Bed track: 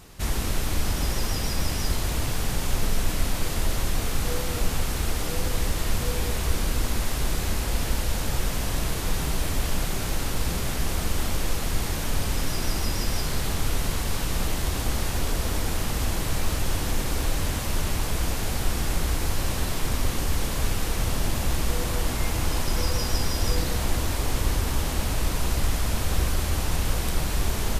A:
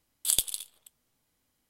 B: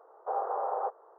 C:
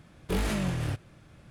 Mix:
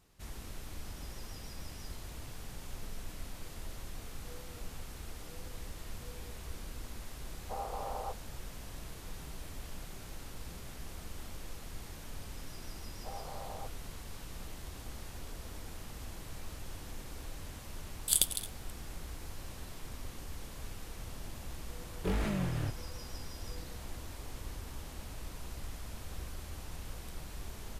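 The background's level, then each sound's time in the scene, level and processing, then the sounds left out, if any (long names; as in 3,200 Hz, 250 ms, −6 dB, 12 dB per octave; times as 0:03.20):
bed track −19 dB
0:07.23: mix in B −8.5 dB
0:12.78: mix in B −15.5 dB + parametric band 640 Hz +3.5 dB 0.35 octaves
0:17.83: mix in A −2 dB
0:21.75: mix in C −4 dB + high-shelf EQ 3,500 Hz −9 dB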